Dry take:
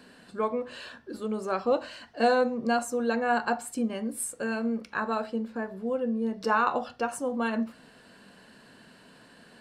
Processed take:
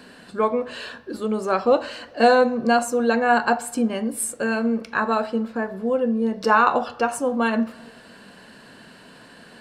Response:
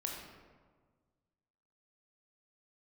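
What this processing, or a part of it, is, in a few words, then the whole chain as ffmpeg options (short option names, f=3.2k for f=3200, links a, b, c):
filtered reverb send: -filter_complex "[0:a]asplit=2[a][b];[b]highpass=330,lowpass=5.7k[c];[1:a]atrim=start_sample=2205[d];[c][d]afir=irnorm=-1:irlink=0,volume=-16dB[e];[a][e]amix=inputs=2:normalize=0,volume=7dB"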